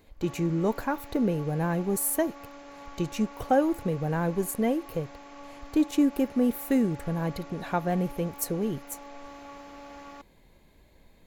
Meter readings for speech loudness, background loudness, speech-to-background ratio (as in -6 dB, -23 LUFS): -28.0 LUFS, -46.0 LUFS, 18.0 dB